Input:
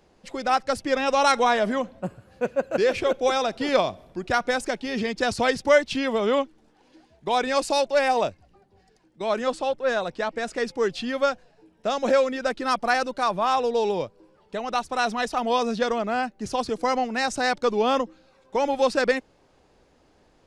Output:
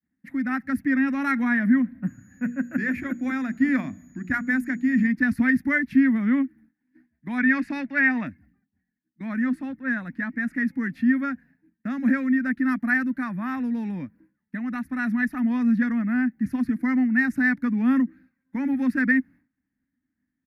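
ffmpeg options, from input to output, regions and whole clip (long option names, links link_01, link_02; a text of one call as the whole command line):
ffmpeg -i in.wav -filter_complex "[0:a]asettb=1/sr,asplit=3[link_01][link_02][link_03];[link_01]atrim=end=2.074[link_04];[link_02]atrim=start=2.07:end=5.07,asetpts=PTS-STARTPTS,afade=type=in:duration=0.004:curve=qsin,afade=type=out:start_time=2.996:duration=0.004:curve=qsin,bandreject=frequency=60:width_type=h:width=6,bandreject=frequency=120:width_type=h:width=6,bandreject=frequency=180:width_type=h:width=6,bandreject=frequency=240:width_type=h:width=6,bandreject=frequency=300:width_type=h:width=6,bandreject=frequency=360:width_type=h:width=6,bandreject=frequency=420:width_type=h:width=6,bandreject=frequency=480:width_type=h:width=6,aeval=exprs='val(0)+0.01*sin(2*PI*6800*n/s)':channel_layout=same[link_05];[link_03]atrim=start=5.066[link_06];[link_04][link_05]acrossfade=duration=0.004:curve1=hsin:curve2=qsin[link_07];[link_07][link_06]acrossfade=duration=0.004:curve1=qsin:curve2=hsin,asettb=1/sr,asplit=3[link_08][link_09][link_10];[link_08]atrim=end=7.384[link_11];[link_09]atrim=start=7.38:end=8.27,asetpts=PTS-STARTPTS,afade=type=in:duration=0.004:curve=qsin,afade=type=out:start_time=0.886:duration=0.004:curve=qsin,lowpass=5800,equalizer=frequency=2200:width=0.69:gain=6.5[link_12];[link_10]atrim=start=8.266[link_13];[link_11][link_12]acrossfade=duration=0.004:curve1=hsin:curve2=qsin[link_14];[link_14][link_13]acrossfade=duration=0.004:curve1=qsin:curve2=hsin,highpass=59,agate=range=-33dB:threshold=-47dB:ratio=3:detection=peak,firequalizer=gain_entry='entry(130,0);entry(260,13);entry(400,-23);entry(1100,-13);entry(1800,8);entry(3000,-22);entry(8200,-23);entry(12000,4)':delay=0.05:min_phase=1" out.wav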